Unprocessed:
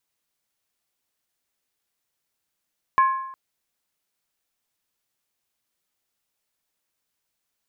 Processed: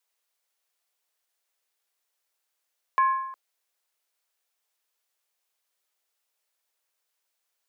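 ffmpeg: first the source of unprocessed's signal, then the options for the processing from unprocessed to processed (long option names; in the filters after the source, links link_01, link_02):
-f lavfi -i "aevalsrc='0.251*pow(10,-3*t/0.82)*sin(2*PI*1060*t)+0.0708*pow(10,-3*t/0.649)*sin(2*PI*1689.6*t)+0.02*pow(10,-3*t/0.561)*sin(2*PI*2264.2*t)+0.00562*pow(10,-3*t/0.541)*sin(2*PI*2433.8*t)+0.00158*pow(10,-3*t/0.503)*sin(2*PI*2812.2*t)':duration=0.36:sample_rate=44100"
-af "highpass=frequency=420:width=0.5412,highpass=frequency=420:width=1.3066,alimiter=limit=-14.5dB:level=0:latency=1:release=130"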